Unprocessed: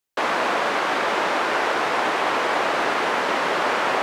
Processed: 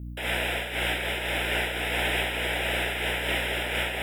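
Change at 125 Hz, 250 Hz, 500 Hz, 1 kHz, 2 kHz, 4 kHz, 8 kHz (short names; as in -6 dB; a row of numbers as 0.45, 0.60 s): +10.0, -6.5, -8.5, -14.0, -3.5, 0.0, -2.0 dB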